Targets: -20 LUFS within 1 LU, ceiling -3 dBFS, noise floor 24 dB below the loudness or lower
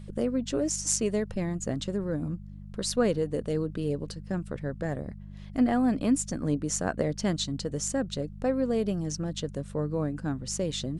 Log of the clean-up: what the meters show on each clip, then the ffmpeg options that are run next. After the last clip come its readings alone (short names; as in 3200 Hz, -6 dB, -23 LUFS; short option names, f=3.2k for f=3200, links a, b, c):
hum 50 Hz; harmonics up to 200 Hz; hum level -40 dBFS; loudness -30.0 LUFS; peak -9.5 dBFS; loudness target -20.0 LUFS
-> -af "bandreject=f=50:t=h:w=4,bandreject=f=100:t=h:w=4,bandreject=f=150:t=h:w=4,bandreject=f=200:t=h:w=4"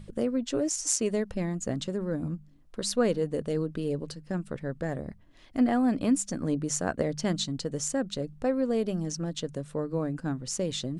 hum none; loudness -30.0 LUFS; peak -10.0 dBFS; loudness target -20.0 LUFS
-> -af "volume=10dB,alimiter=limit=-3dB:level=0:latency=1"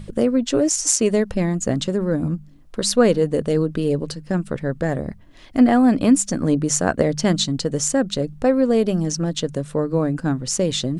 loudness -20.0 LUFS; peak -3.0 dBFS; noise floor -44 dBFS